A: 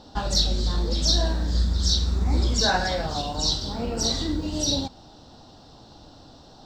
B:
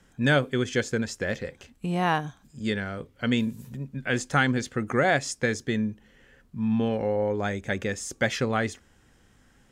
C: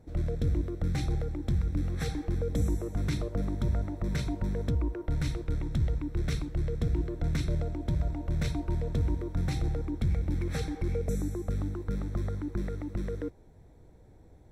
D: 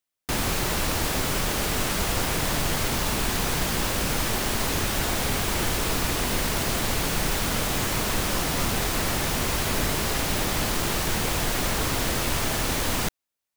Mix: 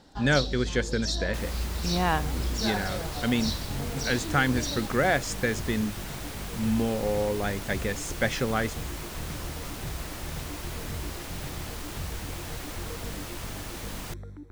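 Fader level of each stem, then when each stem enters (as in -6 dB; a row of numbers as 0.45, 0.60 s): -9.5, -1.5, -9.0, -13.0 dB; 0.00, 0.00, 1.95, 1.05 s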